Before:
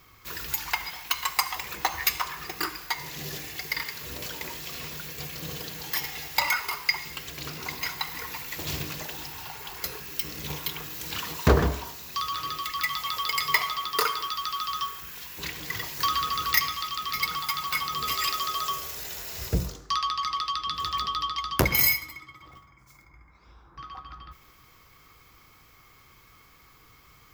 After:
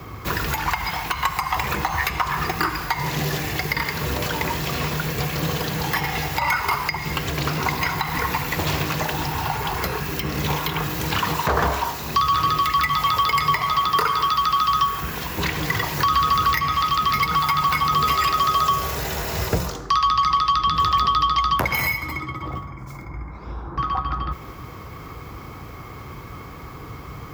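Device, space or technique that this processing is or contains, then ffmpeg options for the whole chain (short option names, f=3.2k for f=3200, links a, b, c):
mastering chain: -filter_complex "[0:a]highpass=56,equalizer=f=840:t=o:w=0.77:g=1.5,acrossover=split=200|780|3300[a][b][c][d];[a]acompressor=threshold=-51dB:ratio=4[e];[b]acompressor=threshold=-56dB:ratio=4[f];[c]acompressor=threshold=-31dB:ratio=4[g];[d]acompressor=threshold=-35dB:ratio=4[h];[e][f][g][h]amix=inputs=4:normalize=0,acompressor=threshold=-36dB:ratio=1.5,tiltshelf=f=1.4k:g=9,alimiter=level_in=23.5dB:limit=-1dB:release=50:level=0:latency=1,volume=-7.5dB"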